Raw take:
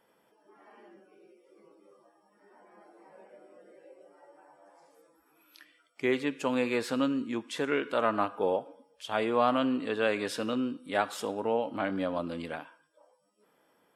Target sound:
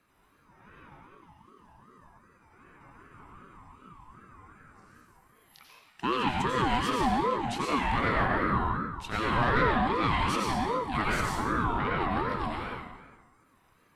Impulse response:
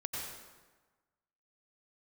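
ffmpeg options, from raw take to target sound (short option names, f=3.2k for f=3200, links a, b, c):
-filter_complex "[1:a]atrim=start_sample=2205[a];[0:a][a]afir=irnorm=-1:irlink=0,asoftclip=type=tanh:threshold=-18dB,aeval=exprs='val(0)*sin(2*PI*620*n/s+620*0.25/2.6*sin(2*PI*2.6*n/s))':c=same,volume=4.5dB"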